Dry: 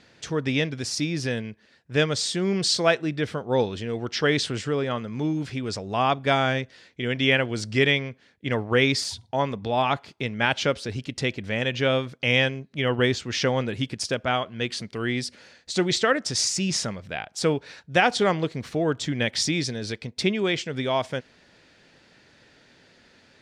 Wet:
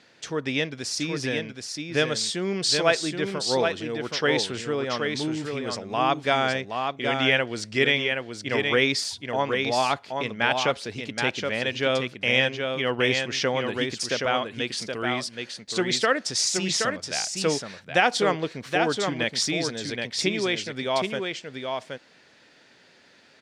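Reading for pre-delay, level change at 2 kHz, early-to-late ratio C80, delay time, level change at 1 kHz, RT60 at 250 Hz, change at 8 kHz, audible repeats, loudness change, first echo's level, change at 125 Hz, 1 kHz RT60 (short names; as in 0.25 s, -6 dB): none, +1.0 dB, none, 0.773 s, +0.5 dB, none, +1.0 dB, 1, 0.0 dB, -5.0 dB, -6.0 dB, none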